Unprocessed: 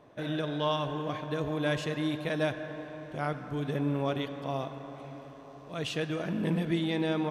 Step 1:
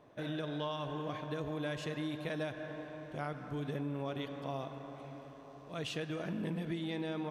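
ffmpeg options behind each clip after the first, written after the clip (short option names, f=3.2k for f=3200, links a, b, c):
-af "acompressor=threshold=-30dB:ratio=6,volume=-4dB"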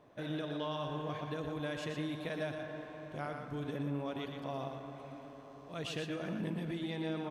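-af "aecho=1:1:119:0.501,volume=-1dB"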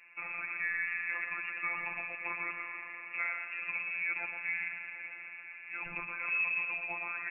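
-af "lowpass=f=2.4k:t=q:w=0.5098,lowpass=f=2.4k:t=q:w=0.6013,lowpass=f=2.4k:t=q:w=0.9,lowpass=f=2.4k:t=q:w=2.563,afreqshift=-2800,afftfilt=real='hypot(re,im)*cos(PI*b)':imag='0':win_size=1024:overlap=0.75,volume=8.5dB"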